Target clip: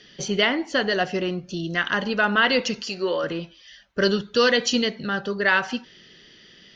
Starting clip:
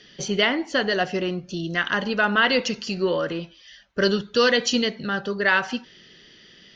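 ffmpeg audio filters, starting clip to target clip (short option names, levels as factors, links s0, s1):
-filter_complex "[0:a]asettb=1/sr,asplit=3[s0][s1][s2];[s0]atrim=end=2.824[s3];[s1]atrim=start=2.82:end=3.24,asetpts=PTS-STARTPTS,afade=t=in:d=0.004:c=qsin,afade=t=out:st=0.416:d=0.004:c=qsin,bass=f=250:g=-12,treble=f=4000:g=2[s4];[s2]atrim=start=3.236[s5];[s3][s4]acrossfade=d=0.004:c1=hsin:c2=qsin[s6];[s6][s5]acrossfade=d=0.004:c1=qsin:c2=hsin"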